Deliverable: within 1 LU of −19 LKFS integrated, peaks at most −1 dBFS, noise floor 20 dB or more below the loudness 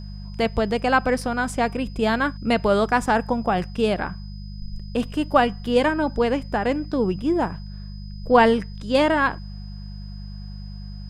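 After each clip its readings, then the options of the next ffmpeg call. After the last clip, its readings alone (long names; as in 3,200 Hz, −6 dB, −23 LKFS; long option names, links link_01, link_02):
mains hum 50 Hz; hum harmonics up to 200 Hz; level of the hum −33 dBFS; interfering tone 5,000 Hz; level of the tone −49 dBFS; integrated loudness −22.0 LKFS; sample peak −2.5 dBFS; target loudness −19.0 LKFS
→ -af "bandreject=frequency=50:width_type=h:width=4,bandreject=frequency=100:width_type=h:width=4,bandreject=frequency=150:width_type=h:width=4,bandreject=frequency=200:width_type=h:width=4"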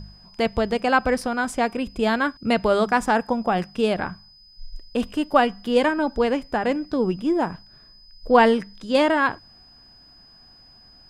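mains hum none found; interfering tone 5,000 Hz; level of the tone −49 dBFS
→ -af "bandreject=frequency=5000:width=30"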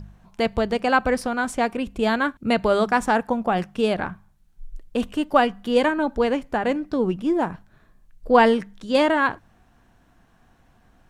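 interfering tone none found; integrated loudness −22.0 LKFS; sample peak −3.0 dBFS; target loudness −19.0 LKFS
→ -af "volume=3dB,alimiter=limit=-1dB:level=0:latency=1"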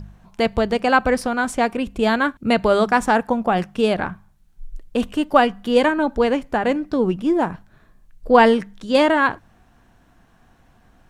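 integrated loudness −19.0 LKFS; sample peak −1.0 dBFS; background noise floor −56 dBFS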